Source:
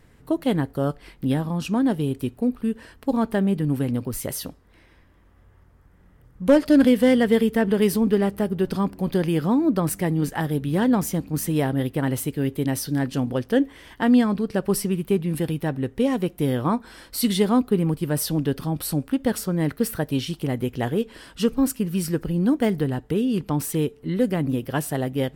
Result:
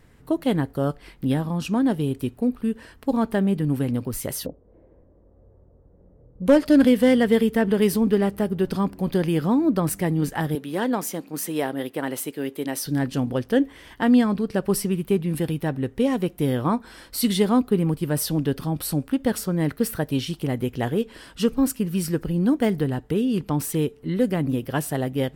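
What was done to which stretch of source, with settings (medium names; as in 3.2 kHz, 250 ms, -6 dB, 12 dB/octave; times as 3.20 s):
4.46–6.46 s: resonant low-pass 530 Hz, resonance Q 3.1
10.55–12.86 s: high-pass 320 Hz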